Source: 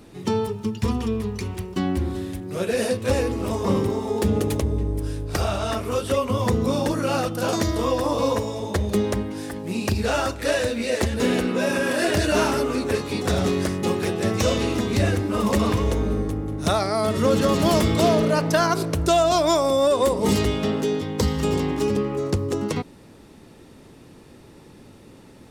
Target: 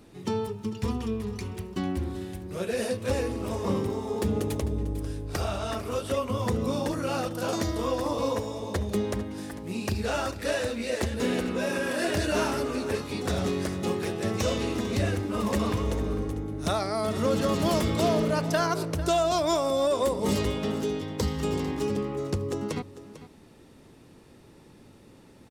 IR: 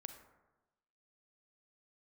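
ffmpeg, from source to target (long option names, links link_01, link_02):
-af "aecho=1:1:448:0.178,volume=-6dB"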